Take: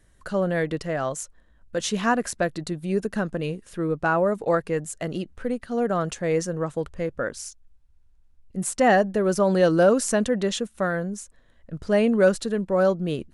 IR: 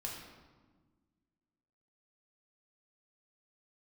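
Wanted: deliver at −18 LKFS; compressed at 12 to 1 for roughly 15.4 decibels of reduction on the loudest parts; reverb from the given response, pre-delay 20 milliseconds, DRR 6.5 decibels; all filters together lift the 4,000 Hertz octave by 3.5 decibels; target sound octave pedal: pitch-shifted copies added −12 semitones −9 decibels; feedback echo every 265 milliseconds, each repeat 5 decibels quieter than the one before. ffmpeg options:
-filter_complex "[0:a]equalizer=frequency=4000:width_type=o:gain=4.5,acompressor=threshold=-29dB:ratio=12,aecho=1:1:265|530|795|1060|1325|1590|1855:0.562|0.315|0.176|0.0988|0.0553|0.031|0.0173,asplit=2[link_01][link_02];[1:a]atrim=start_sample=2205,adelay=20[link_03];[link_02][link_03]afir=irnorm=-1:irlink=0,volume=-6.5dB[link_04];[link_01][link_04]amix=inputs=2:normalize=0,asplit=2[link_05][link_06];[link_06]asetrate=22050,aresample=44100,atempo=2,volume=-9dB[link_07];[link_05][link_07]amix=inputs=2:normalize=0,volume=13.5dB"

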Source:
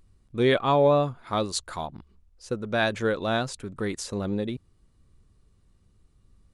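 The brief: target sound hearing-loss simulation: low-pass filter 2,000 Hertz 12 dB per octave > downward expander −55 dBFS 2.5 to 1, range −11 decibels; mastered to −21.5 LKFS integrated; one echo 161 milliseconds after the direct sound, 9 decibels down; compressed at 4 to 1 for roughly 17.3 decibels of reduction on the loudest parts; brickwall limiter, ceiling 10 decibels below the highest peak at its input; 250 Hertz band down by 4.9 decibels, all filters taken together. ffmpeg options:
ffmpeg -i in.wav -af "equalizer=frequency=250:width_type=o:gain=-6.5,acompressor=threshold=-39dB:ratio=4,alimiter=level_in=8dB:limit=-24dB:level=0:latency=1,volume=-8dB,lowpass=2000,aecho=1:1:161:0.355,agate=range=-11dB:threshold=-55dB:ratio=2.5,volume=22dB" out.wav

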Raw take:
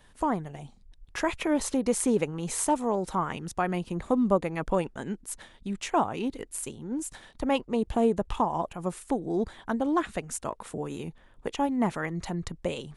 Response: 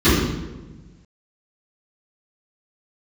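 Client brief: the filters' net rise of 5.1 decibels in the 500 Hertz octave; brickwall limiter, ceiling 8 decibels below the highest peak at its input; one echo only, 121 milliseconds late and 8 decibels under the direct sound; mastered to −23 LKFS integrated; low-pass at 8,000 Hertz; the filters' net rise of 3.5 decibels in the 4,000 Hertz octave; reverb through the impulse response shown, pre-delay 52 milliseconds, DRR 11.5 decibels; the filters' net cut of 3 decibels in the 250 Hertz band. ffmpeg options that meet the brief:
-filter_complex "[0:a]lowpass=8000,equalizer=frequency=250:width_type=o:gain=-6,equalizer=frequency=500:width_type=o:gain=7.5,equalizer=frequency=4000:width_type=o:gain=5,alimiter=limit=-16.5dB:level=0:latency=1,aecho=1:1:121:0.398,asplit=2[link_01][link_02];[1:a]atrim=start_sample=2205,adelay=52[link_03];[link_02][link_03]afir=irnorm=-1:irlink=0,volume=-35.5dB[link_04];[link_01][link_04]amix=inputs=2:normalize=0,volume=5dB"

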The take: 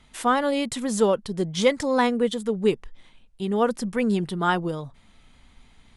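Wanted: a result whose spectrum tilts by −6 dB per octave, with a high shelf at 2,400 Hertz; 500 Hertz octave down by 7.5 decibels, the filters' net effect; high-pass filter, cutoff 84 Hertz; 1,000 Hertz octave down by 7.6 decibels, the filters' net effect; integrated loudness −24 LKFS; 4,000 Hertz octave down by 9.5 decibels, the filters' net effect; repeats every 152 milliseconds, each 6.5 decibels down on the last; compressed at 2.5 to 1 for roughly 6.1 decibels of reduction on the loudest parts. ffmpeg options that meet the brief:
ffmpeg -i in.wav -af "highpass=84,equalizer=frequency=500:width_type=o:gain=-7,equalizer=frequency=1000:width_type=o:gain=-6,highshelf=frequency=2400:gain=-6.5,equalizer=frequency=4000:width_type=o:gain=-6.5,acompressor=threshold=-30dB:ratio=2.5,aecho=1:1:152|304|456|608|760|912:0.473|0.222|0.105|0.0491|0.0231|0.0109,volume=8dB" out.wav

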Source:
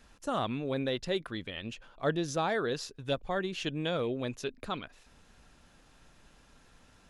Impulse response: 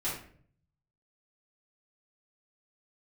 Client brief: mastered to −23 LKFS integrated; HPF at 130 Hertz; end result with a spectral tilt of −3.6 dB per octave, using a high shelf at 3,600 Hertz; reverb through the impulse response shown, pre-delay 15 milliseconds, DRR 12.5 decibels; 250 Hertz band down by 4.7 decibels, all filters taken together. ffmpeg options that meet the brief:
-filter_complex "[0:a]highpass=130,equalizer=frequency=250:width_type=o:gain=-6,highshelf=frequency=3600:gain=-6.5,asplit=2[link_01][link_02];[1:a]atrim=start_sample=2205,adelay=15[link_03];[link_02][link_03]afir=irnorm=-1:irlink=0,volume=-17.5dB[link_04];[link_01][link_04]amix=inputs=2:normalize=0,volume=13dB"

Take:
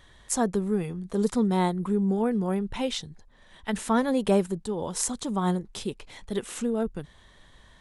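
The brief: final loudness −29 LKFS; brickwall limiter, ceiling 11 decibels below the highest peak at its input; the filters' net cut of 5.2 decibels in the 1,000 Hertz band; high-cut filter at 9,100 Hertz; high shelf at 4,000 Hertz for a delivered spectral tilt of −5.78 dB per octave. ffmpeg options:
ffmpeg -i in.wav -af "lowpass=9100,equalizer=frequency=1000:width_type=o:gain=-6.5,highshelf=frequency=4000:gain=-5.5,volume=4dB,alimiter=limit=-19dB:level=0:latency=1" out.wav

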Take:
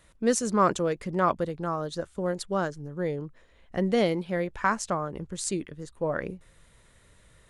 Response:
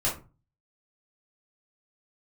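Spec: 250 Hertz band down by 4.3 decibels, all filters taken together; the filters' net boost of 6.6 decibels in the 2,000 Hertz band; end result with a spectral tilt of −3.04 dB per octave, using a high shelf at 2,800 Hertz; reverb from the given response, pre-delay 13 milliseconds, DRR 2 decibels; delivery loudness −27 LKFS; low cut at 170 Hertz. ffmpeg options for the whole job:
-filter_complex "[0:a]highpass=170,equalizer=frequency=250:width_type=o:gain=-4.5,equalizer=frequency=2000:width_type=o:gain=6,highshelf=frequency=2800:gain=8,asplit=2[link_01][link_02];[1:a]atrim=start_sample=2205,adelay=13[link_03];[link_02][link_03]afir=irnorm=-1:irlink=0,volume=-11dB[link_04];[link_01][link_04]amix=inputs=2:normalize=0,volume=-2.5dB"

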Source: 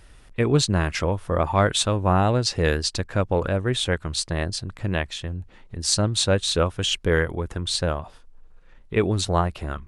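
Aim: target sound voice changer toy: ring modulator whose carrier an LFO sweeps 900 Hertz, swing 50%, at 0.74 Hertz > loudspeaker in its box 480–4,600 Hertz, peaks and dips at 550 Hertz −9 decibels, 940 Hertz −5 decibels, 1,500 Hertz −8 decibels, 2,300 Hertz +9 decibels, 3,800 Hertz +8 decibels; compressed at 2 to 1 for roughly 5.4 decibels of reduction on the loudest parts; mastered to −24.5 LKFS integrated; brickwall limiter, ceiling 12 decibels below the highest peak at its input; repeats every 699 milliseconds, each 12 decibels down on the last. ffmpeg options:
ffmpeg -i in.wav -af "acompressor=threshold=-24dB:ratio=2,alimiter=limit=-20.5dB:level=0:latency=1,aecho=1:1:699|1398|2097:0.251|0.0628|0.0157,aeval=exprs='val(0)*sin(2*PI*900*n/s+900*0.5/0.74*sin(2*PI*0.74*n/s))':channel_layout=same,highpass=480,equalizer=frequency=550:width_type=q:width=4:gain=-9,equalizer=frequency=940:width_type=q:width=4:gain=-5,equalizer=frequency=1500:width_type=q:width=4:gain=-8,equalizer=frequency=2300:width_type=q:width=4:gain=9,equalizer=frequency=3800:width_type=q:width=4:gain=8,lowpass=frequency=4600:width=0.5412,lowpass=frequency=4600:width=1.3066,volume=9.5dB" out.wav

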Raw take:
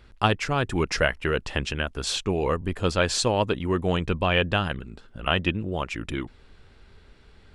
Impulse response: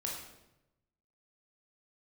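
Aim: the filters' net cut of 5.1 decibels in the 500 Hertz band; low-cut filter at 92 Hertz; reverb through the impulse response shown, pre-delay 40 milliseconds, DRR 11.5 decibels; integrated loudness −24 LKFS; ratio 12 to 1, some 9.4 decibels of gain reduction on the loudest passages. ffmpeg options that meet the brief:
-filter_complex "[0:a]highpass=92,equalizer=frequency=500:width_type=o:gain=-6.5,acompressor=threshold=-27dB:ratio=12,asplit=2[link_01][link_02];[1:a]atrim=start_sample=2205,adelay=40[link_03];[link_02][link_03]afir=irnorm=-1:irlink=0,volume=-13dB[link_04];[link_01][link_04]amix=inputs=2:normalize=0,volume=8.5dB"

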